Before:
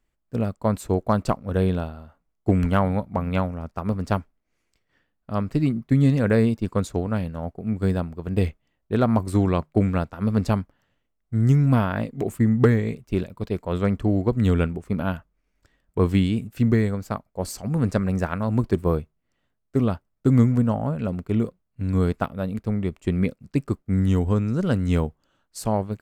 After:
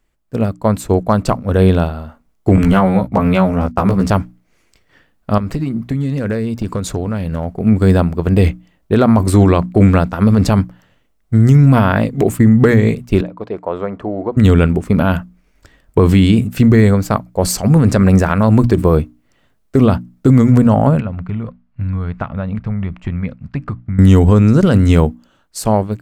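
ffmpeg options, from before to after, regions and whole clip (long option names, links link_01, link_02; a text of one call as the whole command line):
ffmpeg -i in.wav -filter_complex "[0:a]asettb=1/sr,asplit=3[link_01][link_02][link_03];[link_01]atrim=end=2.564[link_04];[link_02]atrim=start=2.56:end=4.1,asetpts=PTS-STARTPTS,afade=type=in:duration=0.004:curve=qsin,afade=type=out:start_time=1.536:duration=0.004:curve=qsin,agate=range=-20dB:threshold=-39dB:ratio=16:release=100:detection=peak,acompressor=threshold=-24dB:ratio=4:attack=3.2:release=140:knee=1:detection=peak,asplit=2[link_05][link_06];[link_06]adelay=16,volume=-2dB[link_07];[link_05][link_07]amix=inputs=2:normalize=0,atrim=end_sample=67914[link_08];[link_03]atrim=start=4.096[link_09];[link_04][link_08]acrossfade=duration=0.004:curve1=hsin:curve2=qsin[link_10];[link_10][link_09]acrossfade=duration=0.004:curve1=qsin:curve2=hsin,asettb=1/sr,asplit=3[link_11][link_12][link_13];[link_11]atrim=end=5.384[link_14];[link_12]atrim=start=5.38:end=7.6,asetpts=PTS-STARTPTS,afade=type=in:duration=0.004:curve=qsin,afade=type=out:start_time=2.216:duration=0.004:curve=qsin,acompressor=threshold=-31dB:ratio=12:attack=3.2:release=140:knee=1:detection=peak,asoftclip=type=hard:threshold=-28dB[link_15];[link_13]atrim=start=7.596[link_16];[link_14][link_15]acrossfade=duration=0.004:curve1=hsin:curve2=qsin[link_17];[link_17][link_16]acrossfade=duration=0.004:curve1=qsin:curve2=hsin,asettb=1/sr,asplit=3[link_18][link_19][link_20];[link_18]atrim=end=13.214[link_21];[link_19]atrim=start=13.21:end=14.37,asetpts=PTS-STARTPTS,afade=type=in:duration=0.004:curve=qsin,afade=type=out:start_time=1.156:duration=0.004:curve=qsin,acompressor=threshold=-25dB:ratio=2.5:attack=3.2:release=140:knee=1:detection=peak,bandpass=frequency=740:width_type=q:width=1[link_22];[link_20]atrim=start=14.366[link_23];[link_21][link_22]acrossfade=duration=0.004:curve1=hsin:curve2=qsin[link_24];[link_24][link_23]acrossfade=duration=0.004:curve1=qsin:curve2=hsin,asettb=1/sr,asplit=3[link_25][link_26][link_27];[link_25]atrim=end=21.004[link_28];[link_26]atrim=start=21:end=23.99,asetpts=PTS-STARTPTS,afade=type=in:duration=0.004:curve=qsin,afade=type=out:start_time=2.986:duration=0.004:curve=qsin,lowpass=2200,equalizer=frequency=370:width_type=o:width=1.2:gain=-14,acompressor=threshold=-33dB:ratio=6:attack=3.2:release=140:knee=1:detection=peak[link_29];[link_27]atrim=start=23.986[link_30];[link_28][link_29]acrossfade=duration=0.004:curve1=hsin:curve2=qsin[link_31];[link_31][link_30]acrossfade=duration=0.004:curve1=qsin:curve2=hsin,bandreject=frequency=60:width_type=h:width=6,bandreject=frequency=120:width_type=h:width=6,bandreject=frequency=180:width_type=h:width=6,bandreject=frequency=240:width_type=h:width=6,bandreject=frequency=300:width_type=h:width=6,dynaudnorm=framelen=360:gausssize=9:maxgain=11.5dB,alimiter=level_in=9.5dB:limit=-1dB:release=50:level=0:latency=1,volume=-1dB" out.wav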